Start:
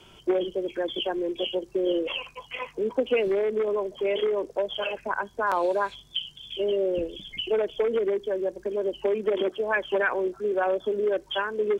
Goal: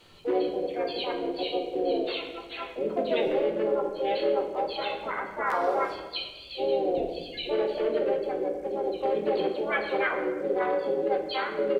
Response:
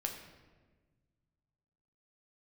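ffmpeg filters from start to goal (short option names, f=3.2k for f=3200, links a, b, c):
-filter_complex "[0:a]asplit=3[a][b][c];[b]asetrate=35002,aresample=44100,atempo=1.25992,volume=-7dB[d];[c]asetrate=58866,aresample=44100,atempo=0.749154,volume=-1dB[e];[a][d][e]amix=inputs=3:normalize=0[f];[1:a]atrim=start_sample=2205[g];[f][g]afir=irnorm=-1:irlink=0,volume=-6dB"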